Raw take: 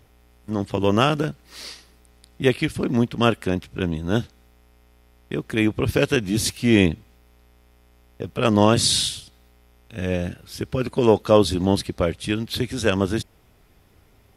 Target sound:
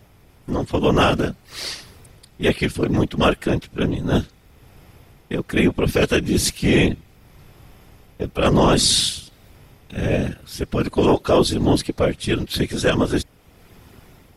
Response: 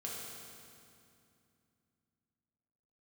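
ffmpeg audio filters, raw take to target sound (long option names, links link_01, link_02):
-af "afftfilt=real='hypot(re,im)*cos(2*PI*random(0))':imag='hypot(re,im)*sin(2*PI*random(1))':win_size=512:overlap=0.75,apsyclip=18dB,dynaudnorm=framelen=130:gausssize=5:maxgain=5.5dB,volume=-7.5dB"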